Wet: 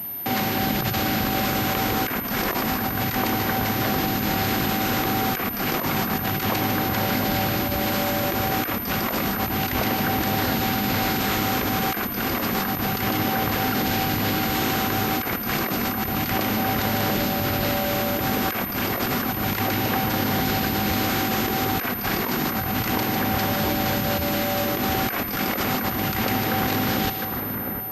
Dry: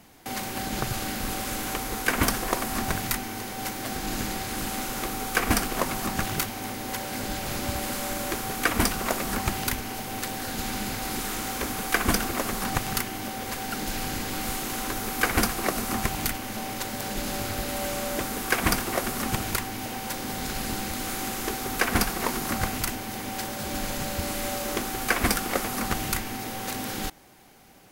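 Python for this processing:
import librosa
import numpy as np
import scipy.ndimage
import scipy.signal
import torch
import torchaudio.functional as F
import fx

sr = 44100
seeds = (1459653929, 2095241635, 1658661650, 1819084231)

y = scipy.signal.sosfilt(scipy.signal.butter(2, 85.0, 'highpass', fs=sr, output='sos'), x)
y = fx.bass_treble(y, sr, bass_db=4, treble_db=-1)
y = fx.echo_split(y, sr, split_hz=1900.0, low_ms=706, high_ms=152, feedback_pct=52, wet_db=-9.0)
y = fx.over_compress(y, sr, threshold_db=-31.0, ratio=-1.0)
y = fx.pwm(y, sr, carrier_hz=13000.0)
y = y * 10.0 ** (7.0 / 20.0)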